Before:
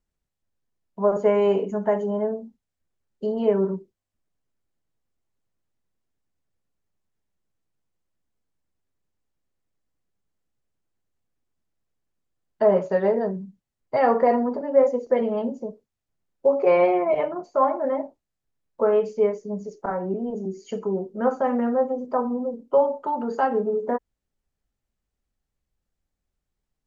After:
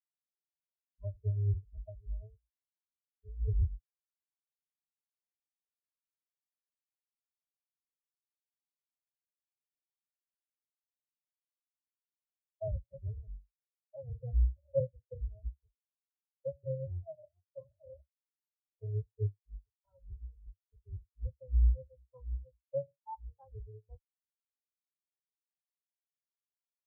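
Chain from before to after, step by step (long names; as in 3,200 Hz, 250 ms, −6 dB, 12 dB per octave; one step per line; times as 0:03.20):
sub-octave generator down 2 octaves, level +3 dB
notch filter 780 Hz, Q 13
treble cut that deepens with the level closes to 450 Hz, closed at −16.5 dBFS
parametric band 310 Hz −11 dB 1.3 octaves
every bin expanded away from the loudest bin 4 to 1
level −5.5 dB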